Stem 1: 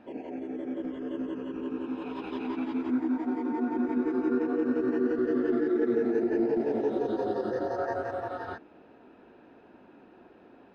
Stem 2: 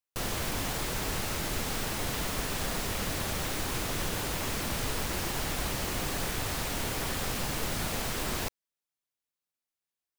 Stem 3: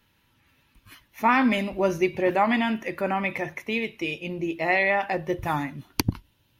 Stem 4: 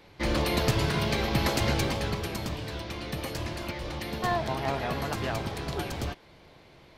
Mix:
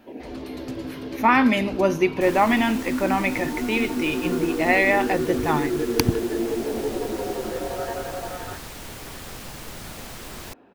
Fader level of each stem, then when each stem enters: +1.0, -5.0, +3.0, -14.5 dB; 0.00, 2.05, 0.00, 0.00 s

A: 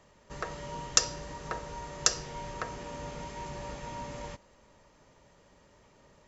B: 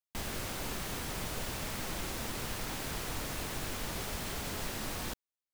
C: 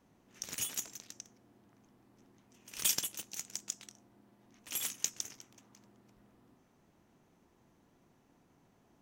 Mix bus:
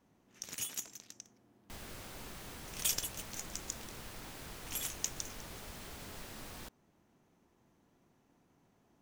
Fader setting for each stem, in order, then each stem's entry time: off, -10.0 dB, -2.5 dB; off, 1.55 s, 0.00 s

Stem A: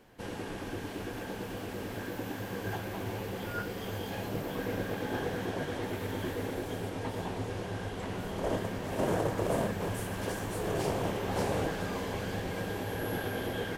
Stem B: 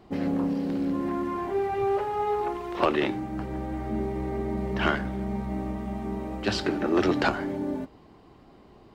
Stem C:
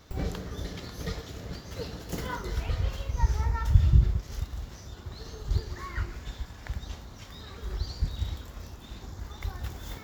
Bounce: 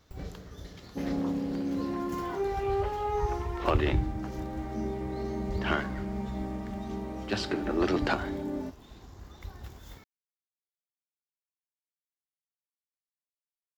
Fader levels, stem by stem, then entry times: off, -4.0 dB, -8.5 dB; off, 0.85 s, 0.00 s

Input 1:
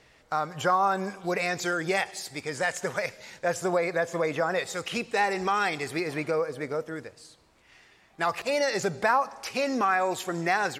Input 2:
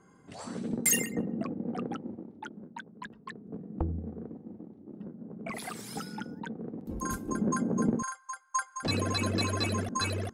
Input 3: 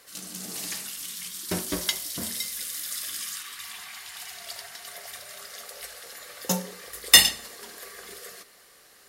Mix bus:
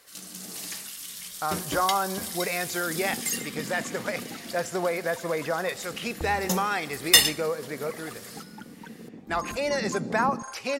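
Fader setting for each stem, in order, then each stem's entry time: -1.5, -4.5, -2.5 dB; 1.10, 2.40, 0.00 s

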